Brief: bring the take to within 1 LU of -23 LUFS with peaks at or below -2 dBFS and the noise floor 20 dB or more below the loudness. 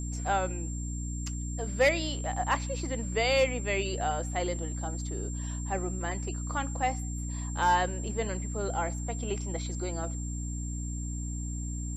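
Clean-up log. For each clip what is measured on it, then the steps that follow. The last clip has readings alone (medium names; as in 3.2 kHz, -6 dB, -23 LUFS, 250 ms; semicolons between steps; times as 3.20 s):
hum 60 Hz; highest harmonic 300 Hz; hum level -32 dBFS; steady tone 7.4 kHz; tone level -42 dBFS; loudness -31.5 LUFS; peak level -14.5 dBFS; loudness target -23.0 LUFS
-> hum notches 60/120/180/240/300 Hz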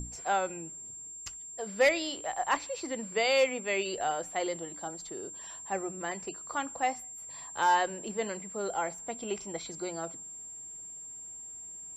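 hum not found; steady tone 7.4 kHz; tone level -42 dBFS
-> band-stop 7.4 kHz, Q 30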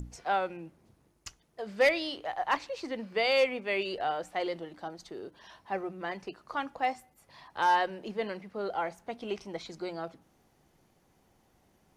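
steady tone not found; loudness -32.0 LUFS; peak level -16.0 dBFS; loudness target -23.0 LUFS
-> trim +9 dB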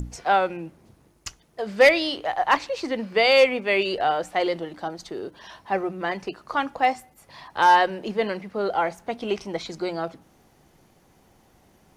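loudness -23.0 LUFS; peak level -7.0 dBFS; noise floor -60 dBFS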